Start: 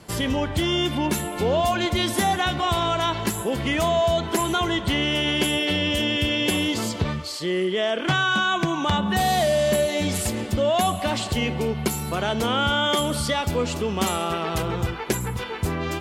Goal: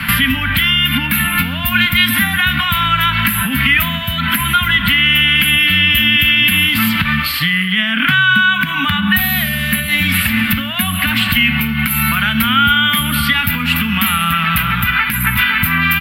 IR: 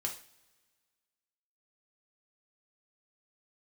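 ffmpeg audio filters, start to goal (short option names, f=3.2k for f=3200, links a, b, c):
-filter_complex "[0:a]acompressor=threshold=-25dB:ratio=6,asplit=2[a][b];[1:a]atrim=start_sample=2205,asetrate=31752,aresample=44100[c];[b][c]afir=irnorm=-1:irlink=0,volume=-12.5dB[d];[a][d]amix=inputs=2:normalize=0,acrossover=split=220|7400[e][f][g];[e]acompressor=threshold=-42dB:ratio=4[h];[f]acompressor=threshold=-41dB:ratio=4[i];[g]acompressor=threshold=-43dB:ratio=4[j];[h][i][j]amix=inputs=3:normalize=0,firequalizer=gain_entry='entry(150,0);entry(250,4);entry(360,-30);entry(860,-7);entry(1400,12);entry(2500,14);entry(6500,-22);entry(13000,12)':delay=0.05:min_phase=1,alimiter=level_in=21.5dB:limit=-1dB:release=50:level=0:latency=1,volume=-1dB"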